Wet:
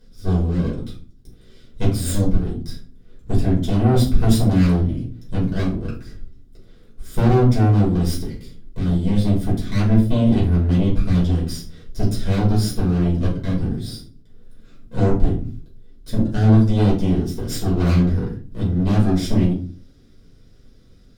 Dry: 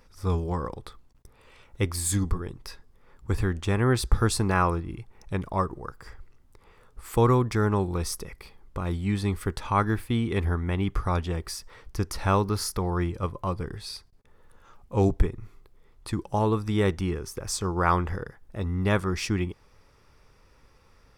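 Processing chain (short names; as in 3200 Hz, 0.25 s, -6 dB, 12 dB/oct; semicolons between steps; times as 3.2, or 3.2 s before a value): minimum comb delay 0.56 ms; ten-band EQ 250 Hz +12 dB, 1000 Hz -8 dB, 2000 Hz -7 dB, 4000 Hz +5 dB; tube stage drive 20 dB, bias 0.65; shoebox room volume 240 m³, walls furnished, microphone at 5.1 m; gain -2.5 dB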